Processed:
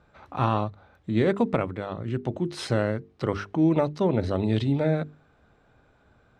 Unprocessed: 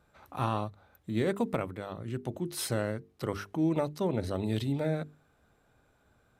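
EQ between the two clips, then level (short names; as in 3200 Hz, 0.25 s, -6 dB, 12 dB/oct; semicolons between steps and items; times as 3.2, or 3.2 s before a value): air absorption 120 m; +7.0 dB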